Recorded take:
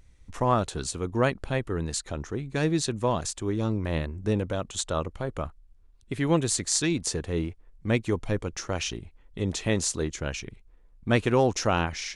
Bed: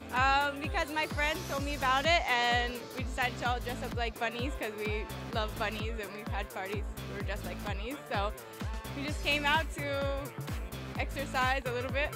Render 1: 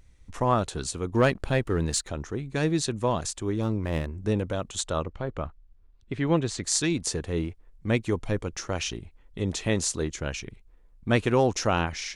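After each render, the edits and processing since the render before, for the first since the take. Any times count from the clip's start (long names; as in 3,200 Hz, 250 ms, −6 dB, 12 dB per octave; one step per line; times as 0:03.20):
0:01.14–0:02.08: leveller curve on the samples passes 1
0:03.62–0:04.07: running median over 9 samples
0:05.02–0:06.64: high-frequency loss of the air 120 metres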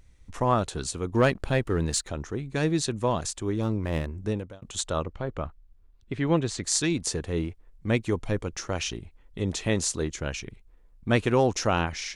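0:04.19–0:04.62: fade out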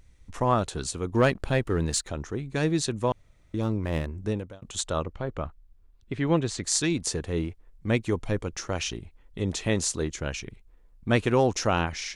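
0:03.12–0:03.54: fill with room tone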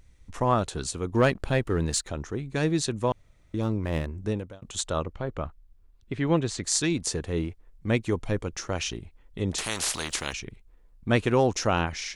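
0:09.58–0:10.33: every bin compressed towards the loudest bin 4 to 1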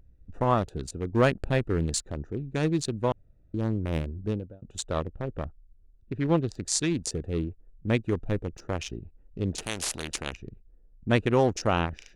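adaptive Wiener filter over 41 samples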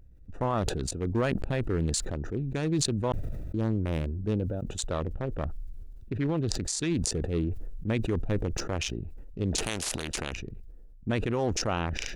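brickwall limiter −19 dBFS, peak gain reduction 11 dB
level that may fall only so fast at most 24 dB per second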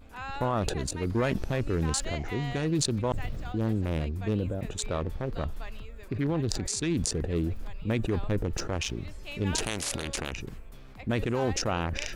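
mix in bed −12 dB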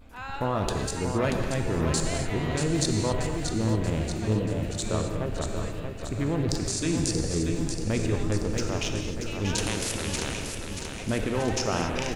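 repeating echo 633 ms, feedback 57%, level −6.5 dB
reverb whose tail is shaped and stops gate 290 ms flat, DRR 3.5 dB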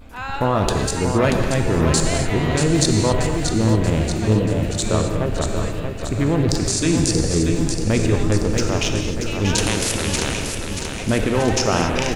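level +8.5 dB
brickwall limiter −1 dBFS, peak gain reduction 1.5 dB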